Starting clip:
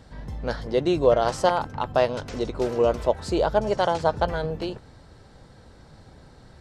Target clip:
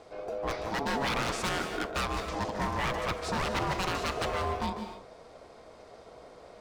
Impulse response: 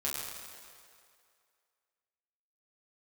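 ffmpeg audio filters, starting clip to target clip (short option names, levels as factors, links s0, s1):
-filter_complex "[0:a]aeval=exprs='0.075*(abs(mod(val(0)/0.075+3,4)-2)-1)':c=same,aeval=exprs='val(0)*sin(2*PI*560*n/s)':c=same,asplit=2[s0][s1];[1:a]atrim=start_sample=2205,atrim=end_sample=6615,adelay=147[s2];[s1][s2]afir=irnorm=-1:irlink=0,volume=0.316[s3];[s0][s3]amix=inputs=2:normalize=0"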